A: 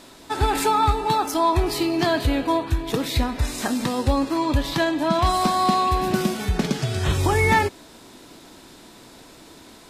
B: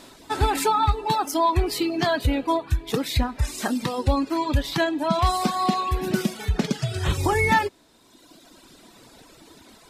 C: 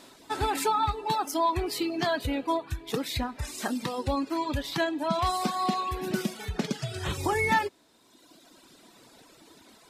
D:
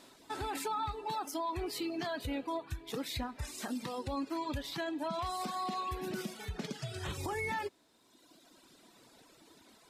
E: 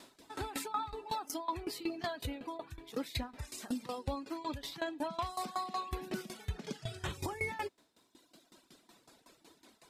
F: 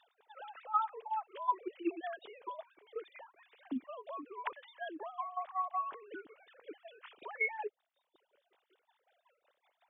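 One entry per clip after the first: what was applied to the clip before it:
reverb removal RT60 1.7 s
bass shelf 81 Hz -12 dB; trim -4.5 dB
peak limiter -22.5 dBFS, peak gain reduction 9 dB; trim -6 dB
sawtooth tremolo in dB decaying 5.4 Hz, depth 18 dB; trim +4.5 dB
formants replaced by sine waves; trim -1 dB

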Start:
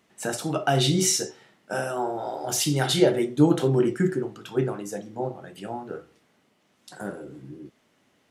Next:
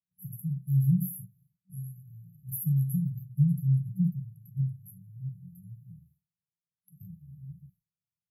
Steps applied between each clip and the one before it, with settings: expander -49 dBFS; FFT band-reject 190–11000 Hz; trim +2 dB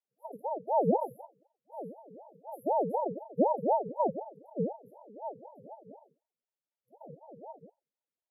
distance through air 110 m; ring modulator with a swept carrier 550 Hz, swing 45%, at 4 Hz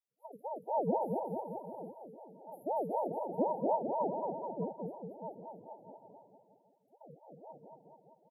bouncing-ball echo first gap 230 ms, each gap 0.9×, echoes 5; trim -6 dB

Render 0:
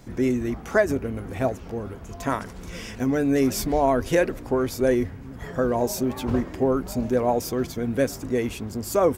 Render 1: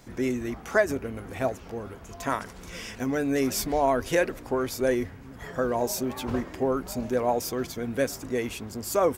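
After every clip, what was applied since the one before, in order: bass shelf 470 Hz -7 dB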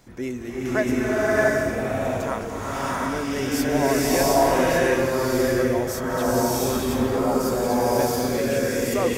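swelling reverb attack 710 ms, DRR -8.5 dB; trim -2.5 dB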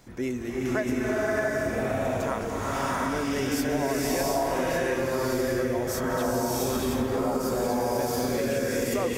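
compression, threshold -23 dBFS, peak gain reduction 9 dB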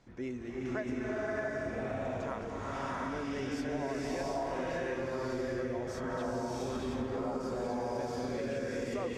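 distance through air 100 m; trim -8.5 dB

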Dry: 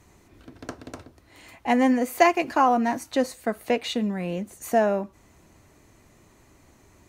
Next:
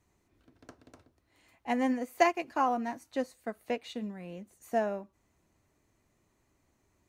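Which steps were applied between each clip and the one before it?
upward expansion 1.5:1, over -34 dBFS; trim -6 dB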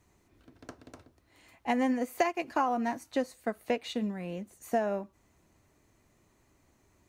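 compression 5:1, threshold -30 dBFS, peak gain reduction 11.5 dB; trim +5.5 dB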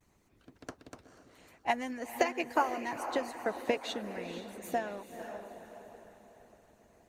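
vibrato 0.44 Hz 32 cents; echo that smears into a reverb 470 ms, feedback 45%, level -6.5 dB; harmonic-percussive split harmonic -14 dB; trim +2.5 dB

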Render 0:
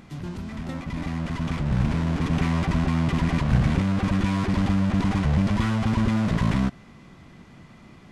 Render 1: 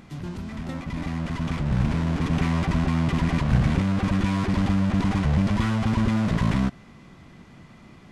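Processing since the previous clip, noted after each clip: no audible change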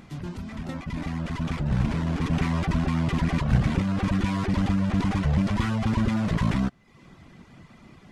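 reverb removal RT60 0.62 s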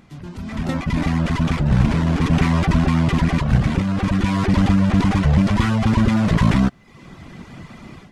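level rider gain up to 14 dB; trim -2.5 dB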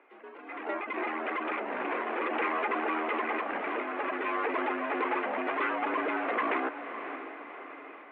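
echo that smears into a reverb 568 ms, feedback 45%, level -9.5 dB; mistuned SSB +67 Hz 350–2500 Hz; trim -4 dB

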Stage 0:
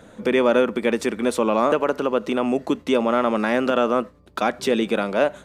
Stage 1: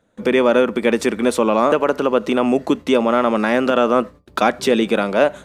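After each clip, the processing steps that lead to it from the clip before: gate with hold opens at -36 dBFS; in parallel at 0 dB: gain riding 0.5 s; on the sum: trim -2 dB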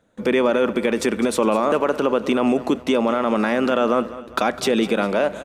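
peak limiter -9 dBFS, peak gain reduction 7.5 dB; feedback delay 204 ms, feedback 45%, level -16 dB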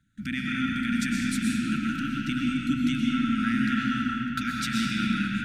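brick-wall FIR band-stop 310–1300 Hz; resonant low shelf 190 Hz +6 dB, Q 1.5; algorithmic reverb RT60 3.6 s, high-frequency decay 0.55×, pre-delay 80 ms, DRR -3.5 dB; trim -7 dB

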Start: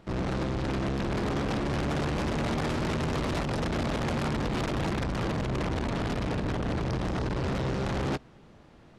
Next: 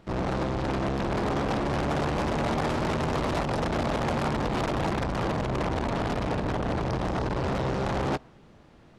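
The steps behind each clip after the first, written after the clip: dynamic bell 790 Hz, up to +6 dB, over -44 dBFS, Q 0.87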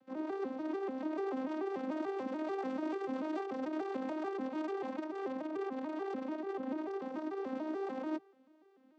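vocoder on a broken chord minor triad, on C4, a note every 146 ms; trim -9 dB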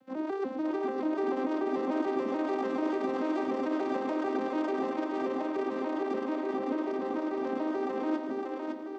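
two-band feedback delay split 310 Hz, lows 389 ms, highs 560 ms, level -3 dB; trim +5 dB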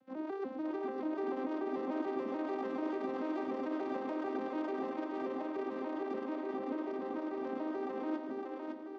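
distance through air 82 m; trim -6 dB

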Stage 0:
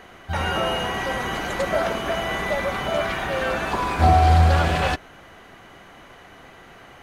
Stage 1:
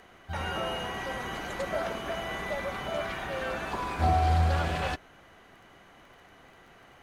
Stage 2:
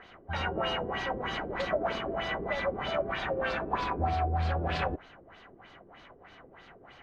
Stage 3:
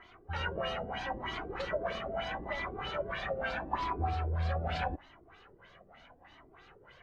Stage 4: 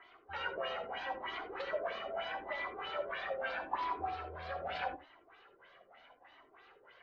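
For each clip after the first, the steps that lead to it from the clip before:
crackle 21 per s -40 dBFS; trim -9 dB
peak limiter -22.5 dBFS, peak gain reduction 8.5 dB; LFO low-pass sine 3.2 Hz 370–4800 Hz
Shepard-style flanger rising 0.78 Hz
three-band isolator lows -18 dB, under 330 Hz, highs -21 dB, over 4.8 kHz; gated-style reverb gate 100 ms rising, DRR 10 dB; trim -2.5 dB

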